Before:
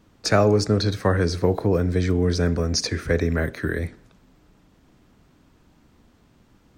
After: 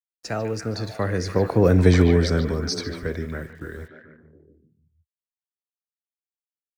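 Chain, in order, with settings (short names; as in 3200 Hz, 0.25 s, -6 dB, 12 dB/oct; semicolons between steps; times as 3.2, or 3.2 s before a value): Doppler pass-by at 1.87, 19 m/s, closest 4.3 m; gate -45 dBFS, range -18 dB; tempo 1×; bit-crush 11-bit; on a send: delay with a stepping band-pass 0.146 s, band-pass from 2700 Hz, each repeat -0.7 oct, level -4 dB; on the sum: gain +7 dB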